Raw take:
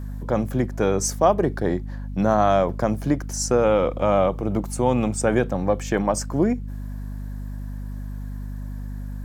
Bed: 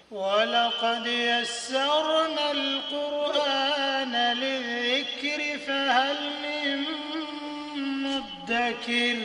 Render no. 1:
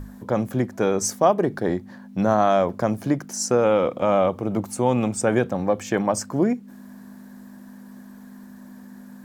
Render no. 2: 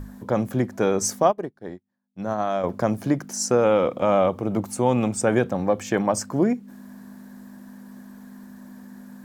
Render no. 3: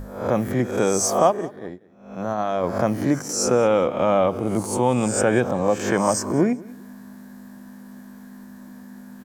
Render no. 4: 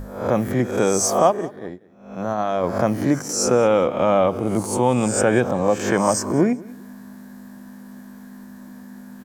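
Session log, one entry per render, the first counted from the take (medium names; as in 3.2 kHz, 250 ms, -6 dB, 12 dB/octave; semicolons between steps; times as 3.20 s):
hum notches 50/100/150 Hz
1.23–2.64 s: upward expansion 2.5:1, over -39 dBFS
reverse spectral sustain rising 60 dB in 0.60 s; feedback delay 192 ms, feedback 26%, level -21.5 dB
trim +1.5 dB; peak limiter -3 dBFS, peak gain reduction 1 dB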